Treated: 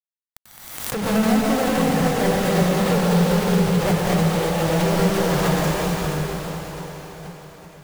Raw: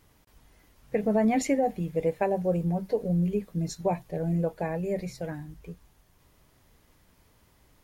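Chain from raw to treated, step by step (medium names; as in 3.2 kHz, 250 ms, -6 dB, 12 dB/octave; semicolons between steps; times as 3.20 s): low-pass that closes with the level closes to 320 Hz, closed at -26.5 dBFS; FFT filter 160 Hz 0 dB, 260 Hz -6 dB, 1.2 kHz +14 dB, 2.4 kHz -4 dB, 5.9 kHz +8 dB; in parallel at +1 dB: compression, threshold -38 dBFS, peak gain reduction 14 dB; on the sum: companded quantiser 2-bit; reverberation RT60 5.2 s, pre-delay 90 ms, DRR -6 dB; swell ahead of each attack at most 51 dB/s; trim +1 dB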